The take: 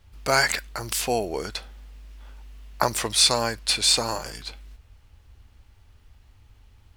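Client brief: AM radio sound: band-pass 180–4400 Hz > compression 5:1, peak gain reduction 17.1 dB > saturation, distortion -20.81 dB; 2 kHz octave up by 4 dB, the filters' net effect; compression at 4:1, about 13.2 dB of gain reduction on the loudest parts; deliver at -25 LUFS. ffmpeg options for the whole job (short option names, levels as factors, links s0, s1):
-af "equalizer=f=2000:t=o:g=5.5,acompressor=threshold=0.0355:ratio=4,highpass=180,lowpass=4400,acompressor=threshold=0.00708:ratio=5,asoftclip=threshold=0.0355,volume=12.6"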